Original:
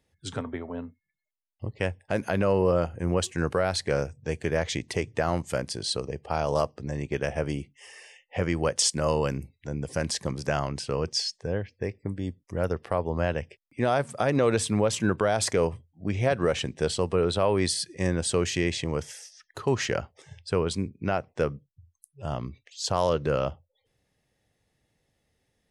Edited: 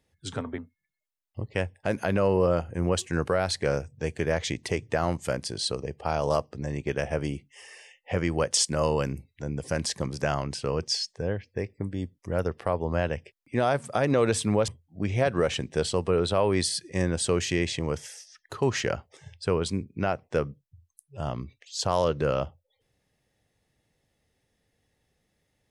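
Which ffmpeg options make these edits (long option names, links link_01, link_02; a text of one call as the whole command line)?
ffmpeg -i in.wav -filter_complex "[0:a]asplit=3[link_01][link_02][link_03];[link_01]atrim=end=0.582[link_04];[link_02]atrim=start=0.828:end=14.932[link_05];[link_03]atrim=start=15.728[link_06];[link_04][link_05]acrossfade=duration=0.004:curve1=hsin:curve2=hsin[link_07];[link_07][link_06]acrossfade=duration=0.004:curve1=hsin:curve2=hsin" out.wav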